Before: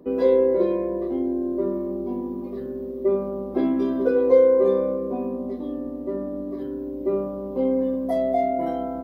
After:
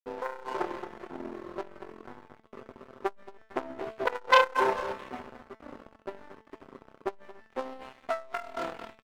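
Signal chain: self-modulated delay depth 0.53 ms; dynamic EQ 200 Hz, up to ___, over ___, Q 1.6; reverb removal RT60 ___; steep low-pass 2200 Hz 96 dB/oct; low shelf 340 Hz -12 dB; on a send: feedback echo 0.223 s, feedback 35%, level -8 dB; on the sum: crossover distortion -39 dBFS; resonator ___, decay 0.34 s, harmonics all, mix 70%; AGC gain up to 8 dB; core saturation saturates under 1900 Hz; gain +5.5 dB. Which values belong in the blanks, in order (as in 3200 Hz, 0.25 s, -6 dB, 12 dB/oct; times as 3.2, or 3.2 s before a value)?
-6 dB, -38 dBFS, 1.2 s, 220 Hz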